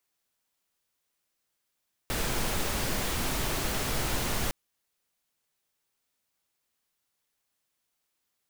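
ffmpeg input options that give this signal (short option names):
-f lavfi -i "anoisesrc=c=pink:a=0.172:d=2.41:r=44100:seed=1"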